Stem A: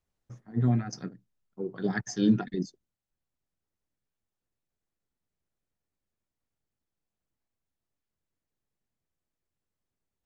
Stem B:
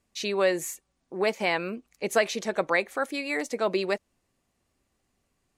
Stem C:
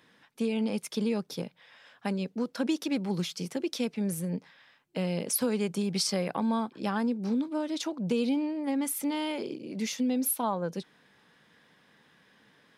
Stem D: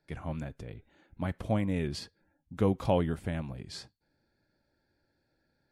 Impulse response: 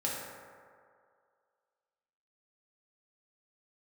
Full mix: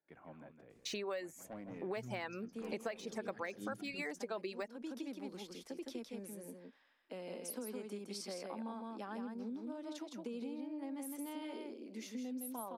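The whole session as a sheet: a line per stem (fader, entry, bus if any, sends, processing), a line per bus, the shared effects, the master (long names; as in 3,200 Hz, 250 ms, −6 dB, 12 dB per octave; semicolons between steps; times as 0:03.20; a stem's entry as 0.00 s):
−13.0 dB, 1.40 s, no send, echo send −13 dB, no processing
−0.5 dB, 0.70 s, no send, no echo send, reverb reduction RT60 0.88 s; de-essing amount 90%
−11.5 dB, 2.15 s, no send, echo send −4 dB, Chebyshev high-pass filter 230 Hz, order 4; parametric band 4,600 Hz −4 dB 2.8 octaves
−12.5 dB, 0.00 s, no send, echo send −8 dB, three-way crossover with the lows and the highs turned down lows −24 dB, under 200 Hz, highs −14 dB, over 2,400 Hz; soft clipping −28 dBFS, distortion −9 dB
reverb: not used
echo: single-tap delay 162 ms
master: downward compressor 5 to 1, threshold −40 dBFS, peak gain reduction 18 dB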